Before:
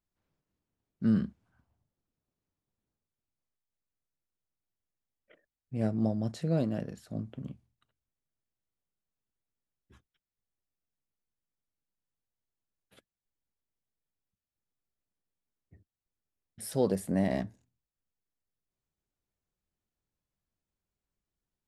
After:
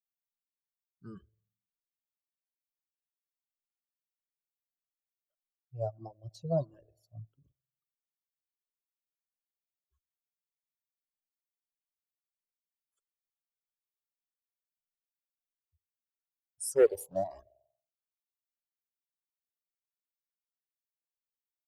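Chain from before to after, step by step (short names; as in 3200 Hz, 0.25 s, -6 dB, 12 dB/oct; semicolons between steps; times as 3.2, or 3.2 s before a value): per-bin expansion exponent 2; EQ curve 140 Hz 0 dB, 230 Hz -23 dB, 380 Hz +9 dB, 910 Hz +12 dB, 2000 Hz -23 dB, 6600 Hz +12 dB; on a send at -21 dB: reverb RT60 0.70 s, pre-delay 78 ms; on the sum: reverb removal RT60 1.7 s; 6.42–7.51 low shelf 290 Hz +9 dB; 16.75–17.24 sample leveller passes 1; endless phaser +1.6 Hz; gain -1.5 dB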